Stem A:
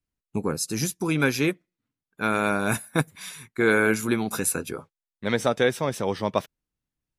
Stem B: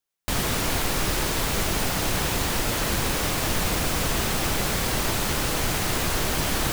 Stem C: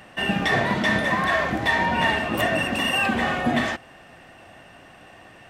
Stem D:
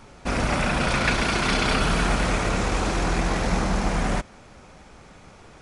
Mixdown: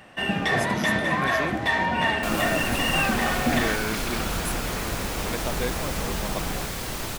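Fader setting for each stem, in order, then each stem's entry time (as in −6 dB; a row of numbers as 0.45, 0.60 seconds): −9.5, −6.5, −2.0, −9.0 decibels; 0.00, 1.95, 0.00, 2.45 seconds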